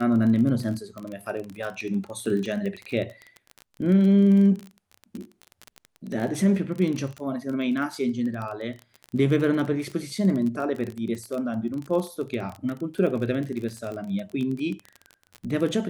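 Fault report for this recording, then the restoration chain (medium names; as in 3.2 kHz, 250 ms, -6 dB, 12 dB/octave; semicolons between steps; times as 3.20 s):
crackle 25 per s -29 dBFS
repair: de-click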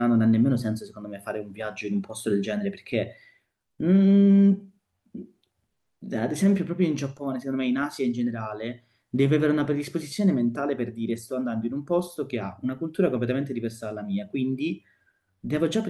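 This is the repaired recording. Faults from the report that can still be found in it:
nothing left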